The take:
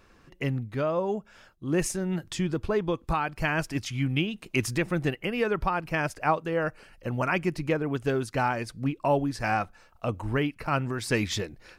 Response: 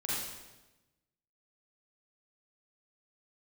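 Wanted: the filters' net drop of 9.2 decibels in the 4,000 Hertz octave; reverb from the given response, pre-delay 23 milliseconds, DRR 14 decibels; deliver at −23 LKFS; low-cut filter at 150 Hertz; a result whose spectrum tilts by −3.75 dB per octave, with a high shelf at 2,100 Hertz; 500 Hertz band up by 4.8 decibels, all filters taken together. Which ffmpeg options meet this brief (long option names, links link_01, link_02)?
-filter_complex "[0:a]highpass=150,equalizer=frequency=500:width_type=o:gain=6.5,highshelf=frequency=2100:gain=-5.5,equalizer=frequency=4000:width_type=o:gain=-8,asplit=2[link_01][link_02];[1:a]atrim=start_sample=2205,adelay=23[link_03];[link_02][link_03]afir=irnorm=-1:irlink=0,volume=-19dB[link_04];[link_01][link_04]amix=inputs=2:normalize=0,volume=4dB"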